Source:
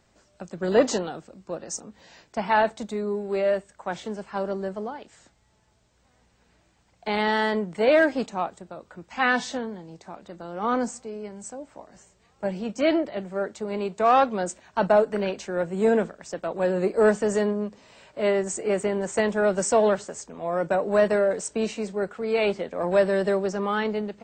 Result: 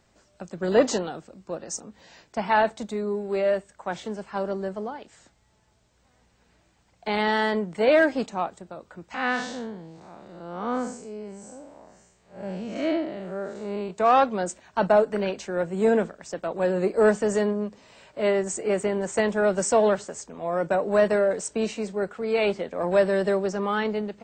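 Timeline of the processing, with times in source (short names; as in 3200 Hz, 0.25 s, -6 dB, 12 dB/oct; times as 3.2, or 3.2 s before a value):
9.14–13.91 time blur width 0.167 s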